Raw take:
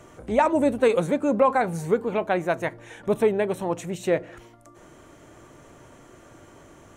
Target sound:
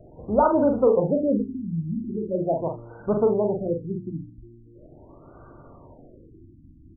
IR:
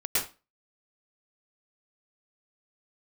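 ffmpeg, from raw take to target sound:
-af "lowshelf=f=100:g=7.5,bandreject=f=60:t=h:w=6,bandreject=f=120:t=h:w=6,bandreject=f=180:t=h:w=6,bandreject=f=240:t=h:w=6,bandreject=f=300:t=h:w=6,bandreject=f=360:t=h:w=6,bandreject=f=420:t=h:w=6,aecho=1:1:43|77:0.596|0.188,afftfilt=real='re*lt(b*sr/1024,320*pow(1600/320,0.5+0.5*sin(2*PI*0.41*pts/sr)))':imag='im*lt(b*sr/1024,320*pow(1600/320,0.5+0.5*sin(2*PI*0.41*pts/sr)))':win_size=1024:overlap=0.75"

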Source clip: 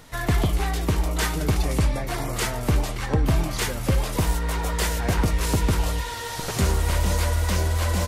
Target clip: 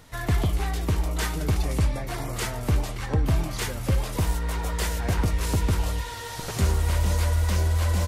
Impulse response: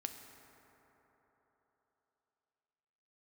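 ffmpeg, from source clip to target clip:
-af "equalizer=f=83:t=o:w=0.97:g=5,volume=-4dB"

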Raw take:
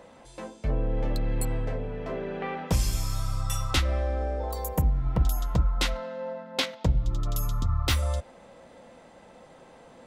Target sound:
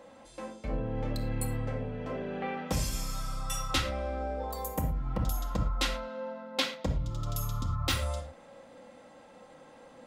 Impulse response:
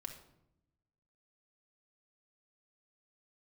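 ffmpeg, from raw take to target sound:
-filter_complex "[0:a]lowshelf=f=94:g=-10.5[a];[1:a]atrim=start_sample=2205,afade=t=out:st=0.17:d=0.01,atrim=end_sample=7938[b];[a][b]afir=irnorm=-1:irlink=0,volume=1.5dB"

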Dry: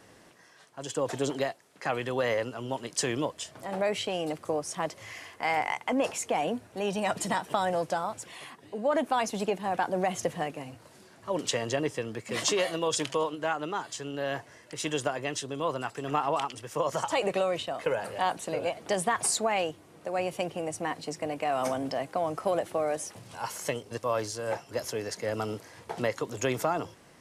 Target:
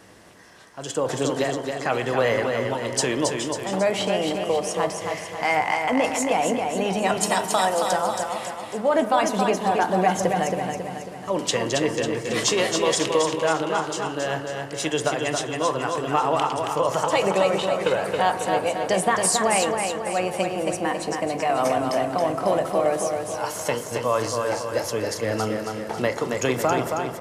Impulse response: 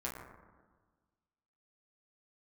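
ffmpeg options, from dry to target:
-filter_complex "[0:a]asettb=1/sr,asplit=3[a][b][c];[a]atrim=end=7.234[d];[b]atrim=start=7.23:end=7.93,asetpts=PTS-STARTPTS,afade=t=in:d=0.004:c=qsin,afade=t=out:st=0.696:d=0.004:c=qsin,bass=f=250:g=-12,treble=f=4k:g=10[e];[c]atrim=start=7.926[f];[d][e]acrossfade=d=0.004:c1=hsin:c2=qsin[g];[g][f]acrossfade=d=0.004:c1=qsin:c2=hsin,aecho=1:1:273|546|819|1092|1365|1638|1911:0.562|0.292|0.152|0.0791|0.0411|0.0214|0.0111,asplit=2[h][i];[1:a]atrim=start_sample=2205[j];[i][j]afir=irnorm=-1:irlink=0,volume=-7.5dB[k];[h][k]amix=inputs=2:normalize=0,volume=3.5dB"

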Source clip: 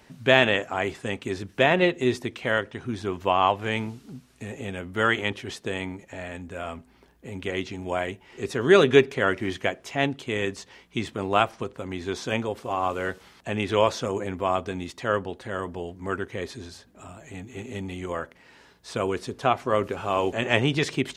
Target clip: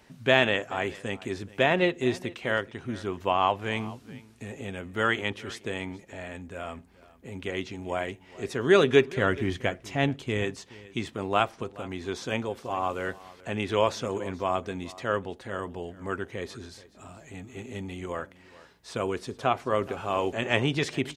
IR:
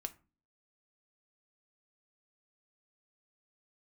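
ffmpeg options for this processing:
-filter_complex "[0:a]asettb=1/sr,asplit=3[a][b][c];[a]atrim=end=9.174[d];[b]atrim=start=9.17:end=10.44,asetpts=PTS-STARTPTS,afade=t=in:d=0.004:c=qsin,afade=t=out:st=1.266:d=0.004:c=qsin,lowshelf=f=160:g=11[e];[c]atrim=start=10.436[f];[d][e]acrossfade=d=0.004:c1=hsin:c2=qsin[g];[g][f]acrossfade=d=0.004:c1=qsin:c2=hsin,asplit=2[h][i];[i]aecho=0:1:426:0.1[j];[h][j]amix=inputs=2:normalize=0,volume=-3dB"

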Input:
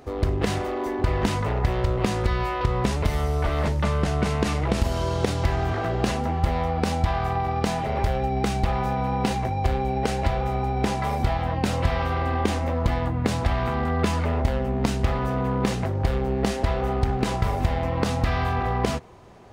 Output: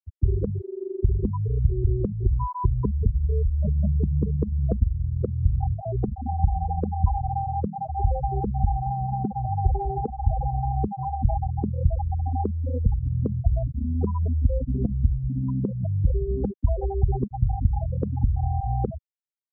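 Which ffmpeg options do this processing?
-filter_complex "[0:a]afftfilt=real='re*gte(hypot(re,im),0.316)':imag='im*gte(hypot(re,im),0.316)':win_size=1024:overlap=0.75,acrossover=split=150|3000[a][b][c];[b]acompressor=threshold=-31dB:ratio=3[d];[a][d][c]amix=inputs=3:normalize=0,crystalizer=i=4:c=0,aresample=16000,aresample=44100,volume=3dB"

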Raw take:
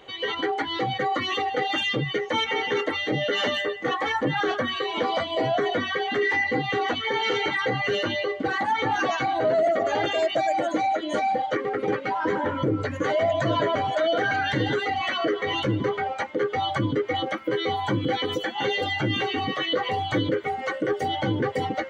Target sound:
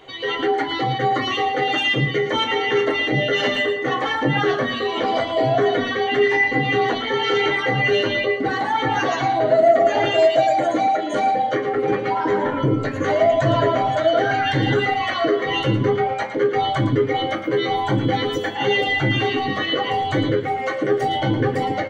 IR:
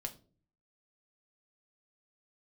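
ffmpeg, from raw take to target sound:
-filter_complex "[0:a]aecho=1:1:113:0.316[a];[1:a]atrim=start_sample=2205[b];[a][b]afir=irnorm=-1:irlink=0,volume=5dB"

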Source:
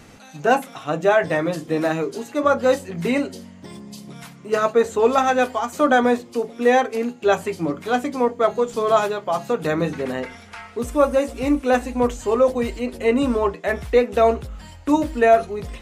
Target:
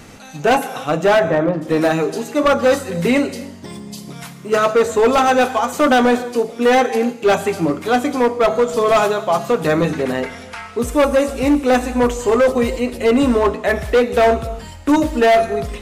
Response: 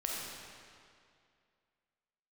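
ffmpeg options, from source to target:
-filter_complex "[0:a]asplit=3[a][b][c];[a]afade=t=out:st=1.19:d=0.02[d];[b]lowpass=1.3k,afade=t=in:st=1.19:d=0.02,afade=t=out:st=1.61:d=0.02[e];[c]afade=t=in:st=1.61:d=0.02[f];[d][e][f]amix=inputs=3:normalize=0,asplit=2[g][h];[1:a]atrim=start_sample=2205,afade=t=out:st=0.36:d=0.01,atrim=end_sample=16317,highshelf=f=5.5k:g=10.5[i];[h][i]afir=irnorm=-1:irlink=0,volume=-14.5dB[j];[g][j]amix=inputs=2:normalize=0,asoftclip=type=hard:threshold=-13.5dB,volume=4.5dB"

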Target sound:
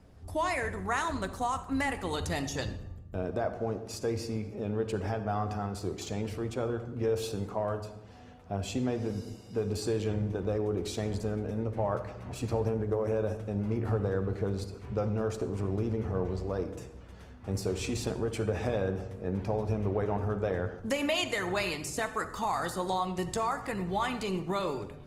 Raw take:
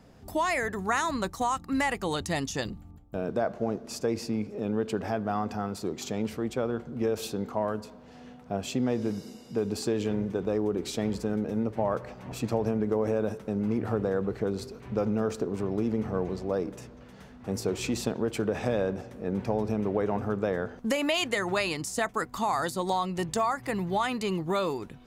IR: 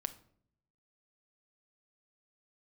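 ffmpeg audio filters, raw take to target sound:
-filter_complex "[0:a]lowshelf=f=120:t=q:w=1.5:g=6.5[a];[1:a]atrim=start_sample=2205,asetrate=23373,aresample=44100[b];[a][b]afir=irnorm=-1:irlink=0,volume=-5.5dB" -ar 48000 -c:a libopus -b:a 24k

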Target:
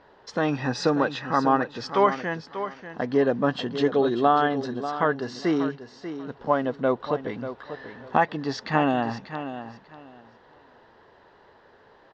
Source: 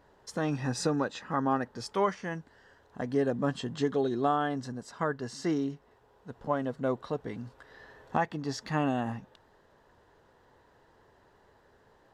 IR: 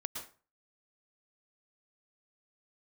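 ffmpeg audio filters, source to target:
-af "lowpass=f=4.8k:w=0.5412,lowpass=f=4.8k:w=1.3066,lowshelf=f=170:g=-11,aecho=1:1:590|1180|1770:0.282|0.0564|0.0113,volume=8.5dB"

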